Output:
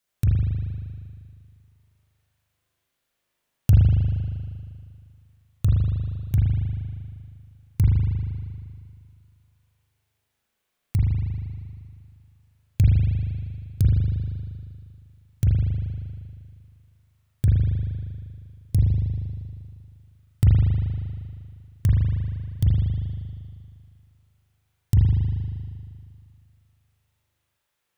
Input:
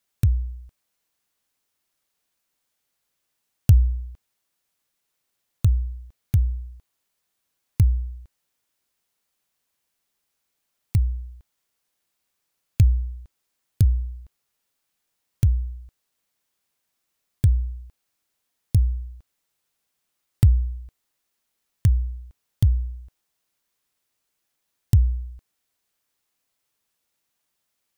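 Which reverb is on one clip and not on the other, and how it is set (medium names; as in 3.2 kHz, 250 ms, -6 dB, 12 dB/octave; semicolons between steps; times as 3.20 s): spring tank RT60 2.2 s, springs 39 ms, chirp 45 ms, DRR -5.5 dB; trim -3 dB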